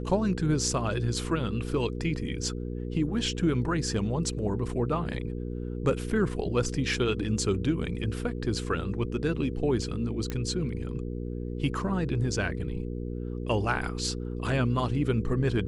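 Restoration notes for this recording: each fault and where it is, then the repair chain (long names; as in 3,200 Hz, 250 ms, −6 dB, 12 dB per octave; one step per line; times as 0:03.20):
mains hum 60 Hz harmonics 8 −34 dBFS
0:10.30: click −18 dBFS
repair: click removal
hum removal 60 Hz, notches 8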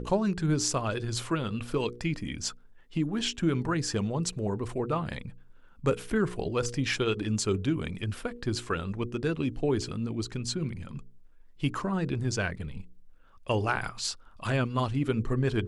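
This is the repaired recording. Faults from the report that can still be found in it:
0:10.30: click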